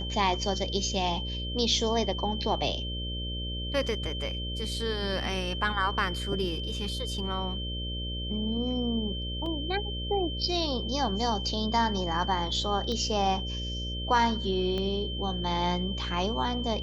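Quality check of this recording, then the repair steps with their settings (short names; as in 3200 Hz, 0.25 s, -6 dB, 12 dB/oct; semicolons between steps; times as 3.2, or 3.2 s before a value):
buzz 60 Hz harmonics 10 -35 dBFS
tone 3100 Hz -36 dBFS
9.46 gap 2.4 ms
12.92 pop -22 dBFS
14.78 pop -21 dBFS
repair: de-click; notch 3100 Hz, Q 30; de-hum 60 Hz, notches 10; interpolate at 9.46, 2.4 ms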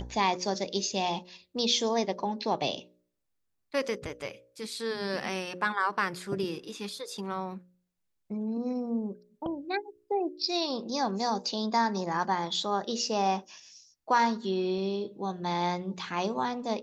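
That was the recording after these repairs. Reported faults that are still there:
14.78 pop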